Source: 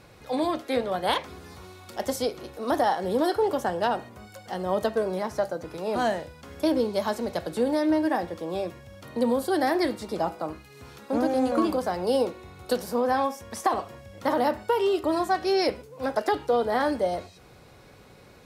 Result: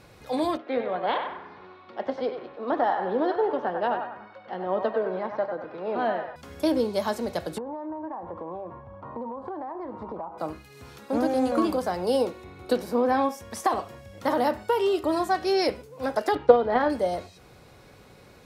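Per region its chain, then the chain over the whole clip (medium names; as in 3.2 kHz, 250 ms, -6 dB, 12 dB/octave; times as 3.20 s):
0.57–6.36 s: band-pass 220–4600 Hz + distance through air 310 m + band-passed feedback delay 96 ms, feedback 52%, band-pass 1.3 kHz, level -4 dB
7.58–10.38 s: resonant low-pass 1 kHz, resonance Q 5 + compression 16:1, threshold -31 dBFS
12.44–13.29 s: tone controls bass -1 dB, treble -7 dB + small resonant body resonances 310/2300/3900 Hz, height 8 dB, ringing for 25 ms
16.35–16.90 s: low-pass 2.8 kHz + transient shaper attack +11 dB, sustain +1 dB
whole clip: none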